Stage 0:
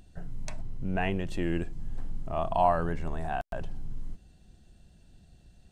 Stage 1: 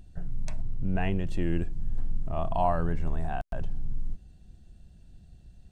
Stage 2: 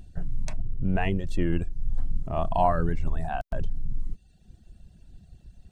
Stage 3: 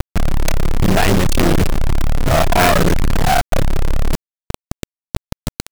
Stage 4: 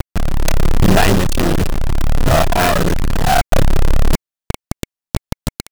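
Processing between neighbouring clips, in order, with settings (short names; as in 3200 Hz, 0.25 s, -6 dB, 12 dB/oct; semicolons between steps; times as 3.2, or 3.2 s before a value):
low shelf 210 Hz +9.5 dB; gain -3.5 dB
reverb removal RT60 1 s; gain +4.5 dB
companded quantiser 2-bit; sine folder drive 7 dB, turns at 0 dBFS; gain +3 dB
notch 2200 Hz, Q 17; AGC gain up to 6 dB; gain -1.5 dB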